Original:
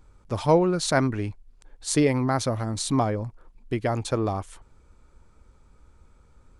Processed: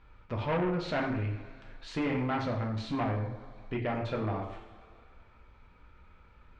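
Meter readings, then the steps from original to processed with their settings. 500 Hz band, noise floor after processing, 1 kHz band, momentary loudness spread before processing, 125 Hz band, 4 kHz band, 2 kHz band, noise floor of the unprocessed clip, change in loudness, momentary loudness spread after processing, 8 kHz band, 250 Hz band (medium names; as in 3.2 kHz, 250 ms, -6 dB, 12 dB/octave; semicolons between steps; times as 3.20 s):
-9.0 dB, -58 dBFS, -7.0 dB, 13 LU, -6.0 dB, -10.5 dB, -4.5 dB, -57 dBFS, -8.0 dB, 12 LU, under -25 dB, -7.5 dB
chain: two-slope reverb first 0.58 s, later 2 s, from -20 dB, DRR -0.5 dB; saturation -19.5 dBFS, distortion -9 dB; four-pole ladder low-pass 3.4 kHz, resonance 30%; tape noise reduction on one side only encoder only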